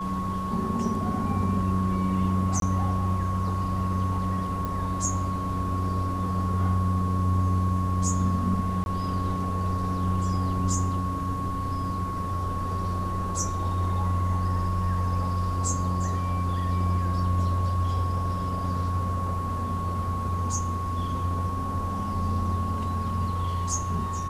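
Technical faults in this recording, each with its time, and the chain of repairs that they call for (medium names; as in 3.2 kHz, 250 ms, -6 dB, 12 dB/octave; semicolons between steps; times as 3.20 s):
whine 1.1 kHz -31 dBFS
2.60–2.62 s: dropout 22 ms
4.65 s: pop
8.84–8.86 s: dropout 21 ms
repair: de-click; band-stop 1.1 kHz, Q 30; interpolate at 2.60 s, 22 ms; interpolate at 8.84 s, 21 ms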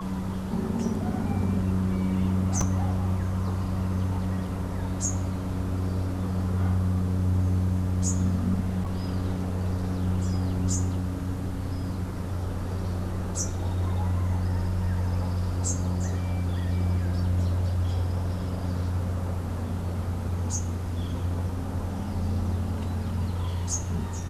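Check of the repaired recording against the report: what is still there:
nothing left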